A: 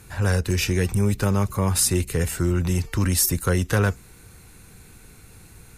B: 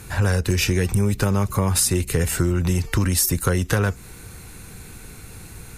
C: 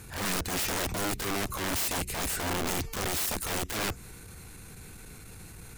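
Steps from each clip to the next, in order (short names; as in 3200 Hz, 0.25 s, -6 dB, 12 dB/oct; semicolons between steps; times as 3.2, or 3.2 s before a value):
compressor, threshold -24 dBFS, peak gain reduction 8.5 dB; gain +7.5 dB
wrapped overs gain 18.5 dB; transient shaper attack -11 dB, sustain +1 dB; gain -6 dB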